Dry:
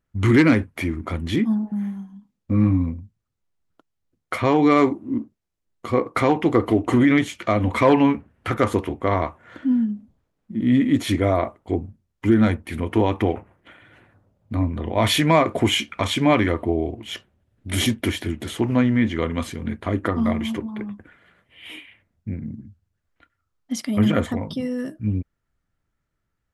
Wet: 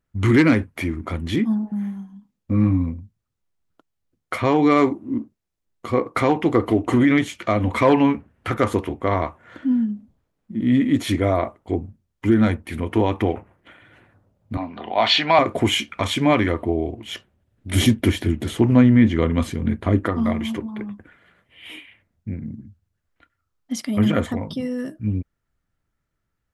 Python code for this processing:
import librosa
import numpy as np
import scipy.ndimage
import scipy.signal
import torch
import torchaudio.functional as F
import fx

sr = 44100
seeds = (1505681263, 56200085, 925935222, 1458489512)

y = fx.cabinet(x, sr, low_hz=300.0, low_slope=12, high_hz=5100.0, hz=(320.0, 490.0, 760.0, 1400.0, 2800.0, 4300.0), db=(-6, -7, 9, 3, 6, 9), at=(14.57, 15.39))
y = fx.low_shelf(y, sr, hz=440.0, db=7.0, at=(17.75, 20.03))